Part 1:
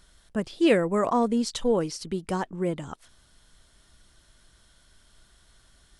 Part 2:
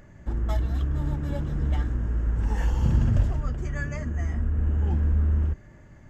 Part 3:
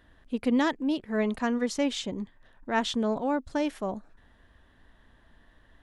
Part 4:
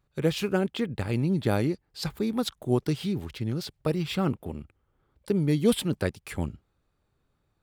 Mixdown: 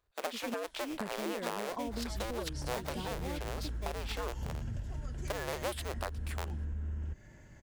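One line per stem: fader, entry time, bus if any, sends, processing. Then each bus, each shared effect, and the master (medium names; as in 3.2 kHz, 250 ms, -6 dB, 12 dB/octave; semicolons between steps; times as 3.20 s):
-4.5 dB, 0.65 s, bus A, no send, none
-6.0 dB, 1.60 s, bus A, no send, treble shelf 2.4 kHz +10 dB
-9.0 dB, 0.00 s, no bus, no send, expander on every frequency bin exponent 1.5; sample-rate reducer 2.9 kHz, jitter 20%; trance gate "x.xxx..xx" 140 bpm -24 dB
-4.5 dB, 0.00 s, no bus, no send, cycle switcher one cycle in 2, inverted; high-pass 410 Hz 24 dB/octave
bus A: 0.0 dB, Butterworth band-stop 1.2 kHz, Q 7.7; compression, threshold -33 dBFS, peak gain reduction 12.5 dB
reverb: none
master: compression 3:1, threshold -34 dBFS, peak gain reduction 10 dB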